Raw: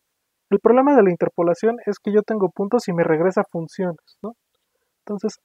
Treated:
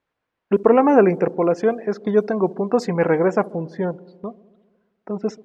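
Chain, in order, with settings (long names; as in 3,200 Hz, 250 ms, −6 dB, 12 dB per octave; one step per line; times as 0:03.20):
low-pass that shuts in the quiet parts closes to 2,100 Hz, open at −11 dBFS
on a send: delay with a low-pass on its return 67 ms, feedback 73%, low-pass 580 Hz, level −19 dB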